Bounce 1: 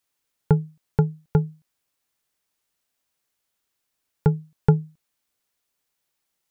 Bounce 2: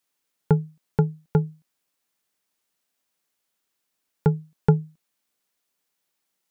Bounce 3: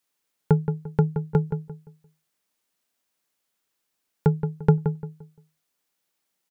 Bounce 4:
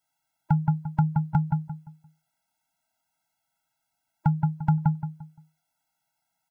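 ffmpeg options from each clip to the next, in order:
-af "lowshelf=f=140:t=q:w=1.5:g=-6"
-filter_complex "[0:a]asplit=2[a][b];[b]adelay=173,lowpass=f=1.7k:p=1,volume=-8dB,asplit=2[c][d];[d]adelay=173,lowpass=f=1.7k:p=1,volume=0.3,asplit=2[e][f];[f]adelay=173,lowpass=f=1.7k:p=1,volume=0.3,asplit=2[g][h];[h]adelay=173,lowpass=f=1.7k:p=1,volume=0.3[i];[a][c][e][g][i]amix=inputs=5:normalize=0"
-af "equalizer=f=125:t=o:w=1:g=8,equalizer=f=250:t=o:w=1:g=-8,equalizer=f=500:t=o:w=1:g=8,equalizer=f=1k:t=o:w=1:g=8,alimiter=limit=-8.5dB:level=0:latency=1:release=137,afftfilt=real='re*eq(mod(floor(b*sr/1024/320),2),0)':imag='im*eq(mod(floor(b*sr/1024/320),2),0)':win_size=1024:overlap=0.75"

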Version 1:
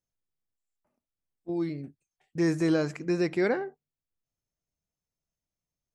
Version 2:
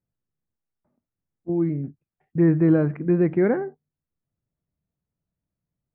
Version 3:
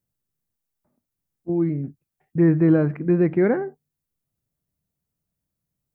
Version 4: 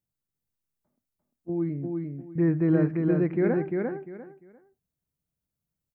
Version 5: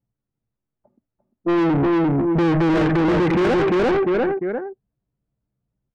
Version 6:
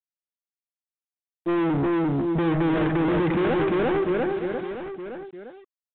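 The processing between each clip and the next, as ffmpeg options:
-af "lowpass=f=2k:w=0.5412,lowpass=f=2k:w=1.3066,equalizer=f=140:w=0.42:g=11.5"
-af "crystalizer=i=1.5:c=0,volume=1dB"
-af "aecho=1:1:348|696|1044:0.668|0.154|0.0354,volume=-6.5dB"
-filter_complex "[0:a]asplit=2[a][b];[b]highpass=f=720:p=1,volume=41dB,asoftclip=type=tanh:threshold=-11.5dB[c];[a][c]amix=inputs=2:normalize=0,lowpass=f=2.1k:p=1,volume=-6dB,acompressor=threshold=-37dB:ratio=1.5,anlmdn=3.98,volume=7.5dB"
-af "acrusher=bits=5:mix=0:aa=0.5,aecho=1:1:916:0.282,volume=-5dB" -ar 8000 -c:a pcm_mulaw

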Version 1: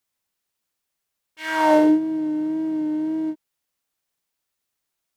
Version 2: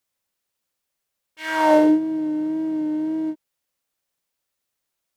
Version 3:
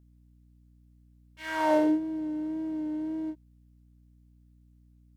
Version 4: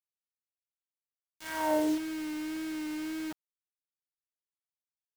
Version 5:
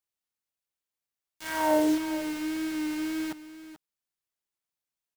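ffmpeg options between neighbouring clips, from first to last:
-af "equalizer=f=540:t=o:w=0.21:g=5.5"
-af "aeval=exprs='val(0)+0.00355*(sin(2*PI*60*n/s)+sin(2*PI*2*60*n/s)/2+sin(2*PI*3*60*n/s)/3+sin(2*PI*4*60*n/s)/4+sin(2*PI*5*60*n/s)/5)':c=same,volume=-8.5dB"
-af "acrusher=bits=5:mix=0:aa=0.000001,volume=-4.5dB"
-af "aecho=1:1:435:0.2,volume=4.5dB"

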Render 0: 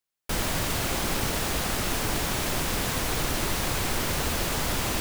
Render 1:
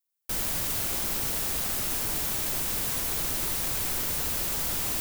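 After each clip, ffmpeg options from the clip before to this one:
-af "aemphasis=mode=production:type=50kf,volume=-8.5dB"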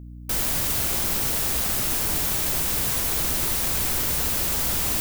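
-af "aeval=exprs='val(0)+0.00708*(sin(2*PI*60*n/s)+sin(2*PI*2*60*n/s)/2+sin(2*PI*3*60*n/s)/3+sin(2*PI*4*60*n/s)/4+sin(2*PI*5*60*n/s)/5)':c=same,volume=5dB"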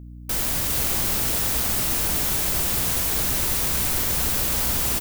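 -af "aecho=1:1:433:0.531"

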